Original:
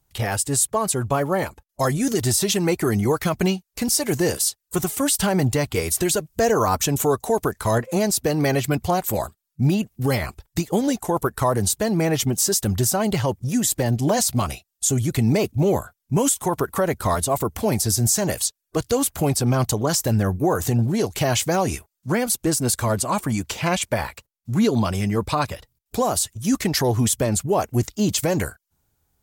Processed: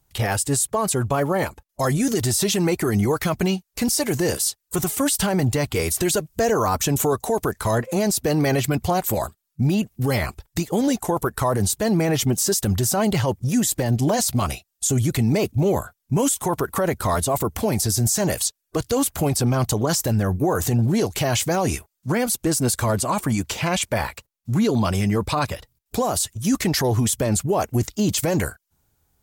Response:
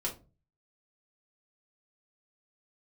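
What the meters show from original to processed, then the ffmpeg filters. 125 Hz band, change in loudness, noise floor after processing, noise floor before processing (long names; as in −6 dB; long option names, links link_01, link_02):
+0.5 dB, 0.0 dB, −78 dBFS, −80 dBFS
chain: -af "alimiter=limit=-15dB:level=0:latency=1:release=13,volume=2.5dB"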